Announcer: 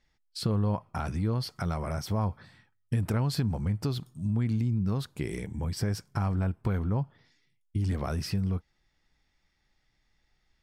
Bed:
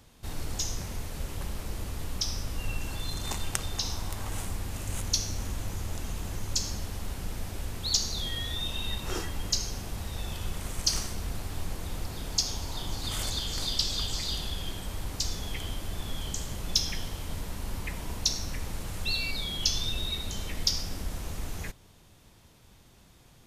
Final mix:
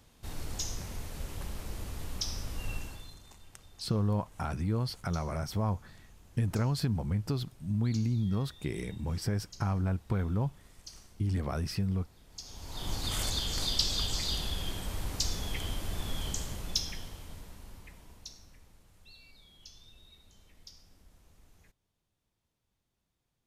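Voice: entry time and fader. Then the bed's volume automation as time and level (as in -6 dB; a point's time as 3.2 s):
3.45 s, -2.0 dB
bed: 2.77 s -4 dB
3.29 s -22 dB
12.28 s -22 dB
12.89 s -0.5 dB
16.29 s -0.5 dB
18.85 s -25.5 dB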